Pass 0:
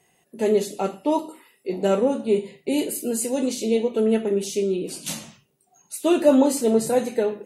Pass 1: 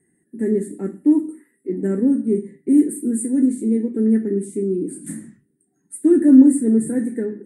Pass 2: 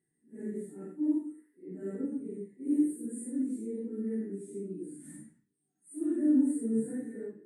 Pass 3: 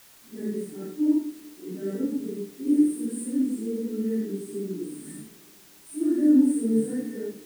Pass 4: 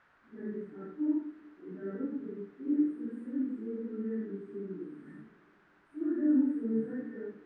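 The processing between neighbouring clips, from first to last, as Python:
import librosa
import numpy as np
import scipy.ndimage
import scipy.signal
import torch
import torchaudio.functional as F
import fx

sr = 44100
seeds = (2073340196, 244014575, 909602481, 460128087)

y1 = fx.curve_eq(x, sr, hz=(130.0, 300.0, 640.0, 1200.0, 1800.0, 2700.0, 6000.0, 8900.0, 13000.0), db=(0, 12, -19, -17, 2, -29, -26, 5, -17))
y1 = y1 * 10.0 ** (-1.0 / 20.0)
y2 = fx.phase_scramble(y1, sr, seeds[0], window_ms=200)
y2 = fx.comb_fb(y2, sr, f0_hz=150.0, decay_s=0.3, harmonics='all', damping=0.0, mix_pct=70)
y2 = y2 * 10.0 ** (-8.5 / 20.0)
y3 = fx.rev_spring(y2, sr, rt60_s=3.5, pass_ms=(47, 51, 60), chirp_ms=45, drr_db=19.0)
y3 = fx.quant_dither(y3, sr, seeds[1], bits=10, dither='triangular')
y3 = y3 * 10.0 ** (7.0 / 20.0)
y4 = fx.lowpass_res(y3, sr, hz=1500.0, q=2.9)
y4 = y4 * 10.0 ** (-8.5 / 20.0)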